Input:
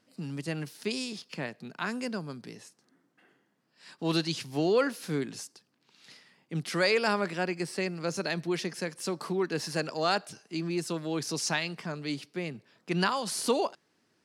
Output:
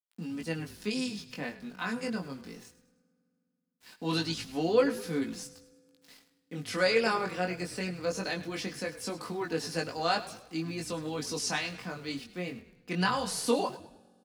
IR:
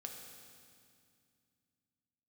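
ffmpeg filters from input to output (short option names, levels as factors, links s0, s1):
-filter_complex "[0:a]aecho=1:1:4:0.49,aeval=exprs='val(0)*gte(abs(val(0)),0.00316)':c=same,flanger=delay=18:depth=4.3:speed=0.2,asplit=5[s0][s1][s2][s3][s4];[s1]adelay=103,afreqshift=-49,volume=0.168[s5];[s2]adelay=206,afreqshift=-98,volume=0.0708[s6];[s3]adelay=309,afreqshift=-147,volume=0.0295[s7];[s4]adelay=412,afreqshift=-196,volume=0.0124[s8];[s0][s5][s6][s7][s8]amix=inputs=5:normalize=0,asplit=2[s9][s10];[1:a]atrim=start_sample=2205[s11];[s10][s11]afir=irnorm=-1:irlink=0,volume=0.141[s12];[s9][s12]amix=inputs=2:normalize=0"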